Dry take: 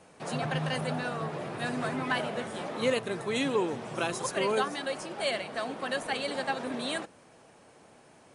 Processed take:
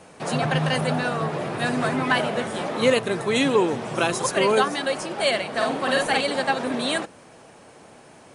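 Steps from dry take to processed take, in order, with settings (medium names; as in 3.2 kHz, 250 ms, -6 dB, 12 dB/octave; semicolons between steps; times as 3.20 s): 5.52–6.21 s: doubling 48 ms -2 dB; trim +8.5 dB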